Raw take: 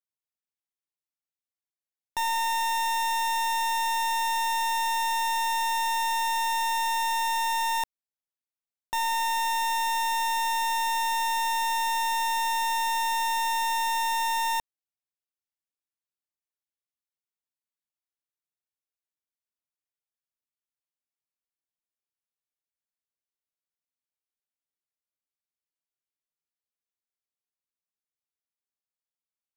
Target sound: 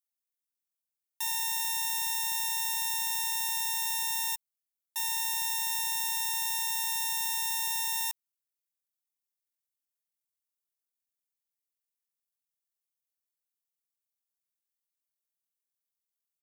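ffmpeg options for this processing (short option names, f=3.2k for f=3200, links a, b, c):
-af "atempo=1.8,aderivative,volume=3dB"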